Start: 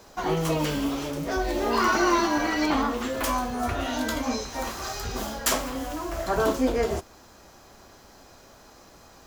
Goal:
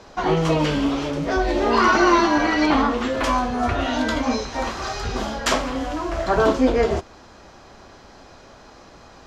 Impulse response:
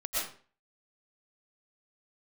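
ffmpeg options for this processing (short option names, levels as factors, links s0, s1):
-af "lowpass=4700,volume=2"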